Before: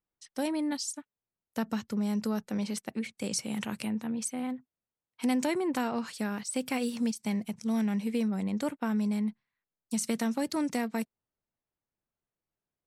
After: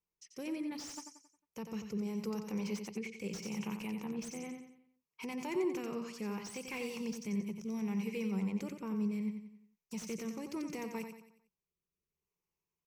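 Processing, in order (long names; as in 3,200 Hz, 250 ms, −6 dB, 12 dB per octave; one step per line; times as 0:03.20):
rotating-speaker cabinet horn 0.7 Hz
brickwall limiter −28.5 dBFS, peak gain reduction 10 dB
EQ curve with evenly spaced ripples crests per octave 0.78, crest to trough 12 dB
on a send: repeating echo 90 ms, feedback 43%, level −7.5 dB
on the sum: slew-rate limiting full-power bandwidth 37 Hz
level −2.5 dB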